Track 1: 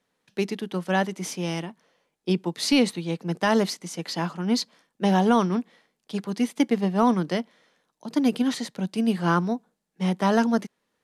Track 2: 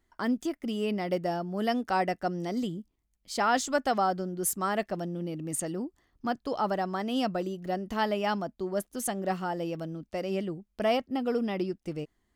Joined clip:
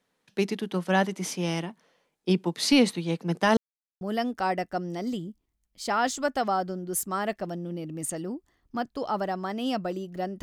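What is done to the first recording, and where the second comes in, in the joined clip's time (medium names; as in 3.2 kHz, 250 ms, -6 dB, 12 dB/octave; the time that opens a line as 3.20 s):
track 1
3.57–4.01 s: mute
4.01 s: go over to track 2 from 1.51 s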